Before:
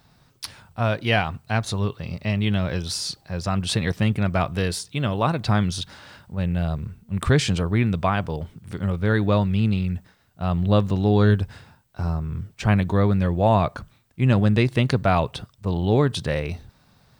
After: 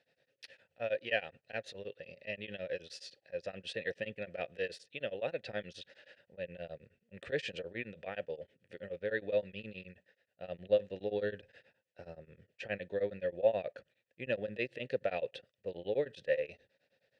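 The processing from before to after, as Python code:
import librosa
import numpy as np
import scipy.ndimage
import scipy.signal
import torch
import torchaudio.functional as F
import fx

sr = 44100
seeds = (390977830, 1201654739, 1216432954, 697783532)

y = fx.vowel_filter(x, sr, vowel='e')
y = fx.peak_eq(y, sr, hz=5200.0, db=5.5, octaves=2.3)
y = y * np.abs(np.cos(np.pi * 9.5 * np.arange(len(y)) / sr))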